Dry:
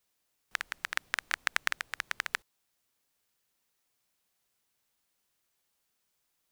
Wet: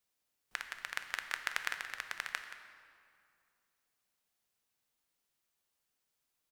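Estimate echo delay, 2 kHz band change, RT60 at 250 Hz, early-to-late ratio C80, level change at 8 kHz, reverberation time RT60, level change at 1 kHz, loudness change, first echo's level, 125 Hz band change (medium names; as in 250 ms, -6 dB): 176 ms, -5.0 dB, 2.6 s, 8.0 dB, -5.5 dB, 2.4 s, -5.0 dB, -5.5 dB, -13.5 dB, no reading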